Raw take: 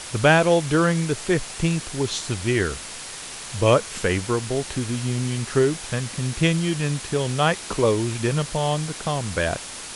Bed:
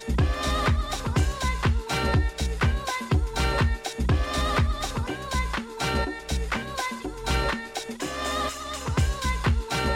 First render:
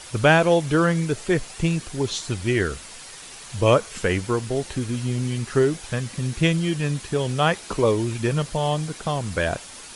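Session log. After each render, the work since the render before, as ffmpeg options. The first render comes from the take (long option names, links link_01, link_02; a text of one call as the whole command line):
ffmpeg -i in.wav -af "afftdn=noise_reduction=7:noise_floor=-36" out.wav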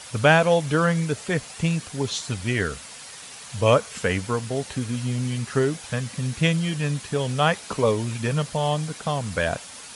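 ffmpeg -i in.wav -af "highpass=81,equalizer=frequency=350:width=6.6:gain=-12.5" out.wav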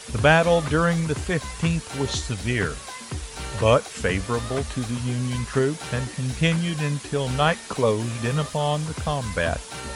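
ffmpeg -i in.wav -i bed.wav -filter_complex "[1:a]volume=-9.5dB[link_01];[0:a][link_01]amix=inputs=2:normalize=0" out.wav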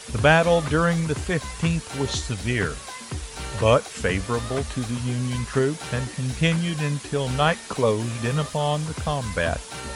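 ffmpeg -i in.wav -af anull out.wav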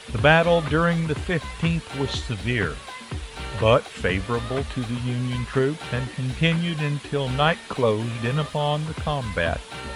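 ffmpeg -i in.wav -af "highshelf=frequency=4500:width_type=q:width=1.5:gain=-7" out.wav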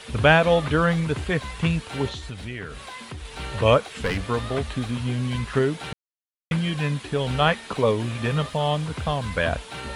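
ffmpeg -i in.wav -filter_complex "[0:a]asettb=1/sr,asplit=3[link_01][link_02][link_03];[link_01]atrim=end=2.084[link_04];[link_02]atrim=start=2.08:end=3.25,asetpts=PTS-STARTPTS,afade=type=in:duration=0.004:curve=qsin,afade=type=out:start_time=1.166:duration=0.004:curve=qsin,acompressor=threshold=-33dB:ratio=3:attack=3.2:release=140:knee=1:detection=peak[link_05];[link_03]atrim=start=3.246[link_06];[link_04][link_05]acrossfade=duration=0.004:curve1=hsin:curve2=qsin[link_07];[link_07][link_06]acrossfade=duration=0.004:curve1=qsin:curve2=hsin,asettb=1/sr,asplit=3[link_08][link_09][link_10];[link_08]atrim=end=3.834[link_11];[link_09]atrim=start=3.83:end=4.24,asetpts=PTS-STARTPTS,afade=type=in:duration=0.004:curve=qsin,afade=type=out:start_time=0.406:duration=0.004:curve=qsin,aeval=exprs='clip(val(0),-1,0.0668)':channel_layout=same[link_12];[link_10]atrim=start=4.236[link_13];[link_11][link_12]acrossfade=duration=0.004:curve1=hsin:curve2=qsin[link_14];[link_14][link_13]acrossfade=duration=0.004:curve1=qsin:curve2=hsin,asplit=3[link_15][link_16][link_17];[link_15]atrim=end=5.93,asetpts=PTS-STARTPTS,afade=type=out:start_time=5.926:duration=0.004:curve=hsin[link_18];[link_16]atrim=start=5.93:end=6.51,asetpts=PTS-STARTPTS,volume=0[link_19];[link_17]atrim=start=6.51,asetpts=PTS-STARTPTS,afade=type=in:duration=0.004:curve=hsin[link_20];[link_18][link_19][link_20]concat=n=3:v=0:a=1" out.wav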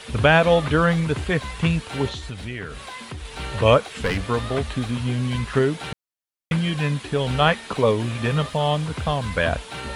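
ffmpeg -i in.wav -af "volume=2dB,alimiter=limit=-3dB:level=0:latency=1" out.wav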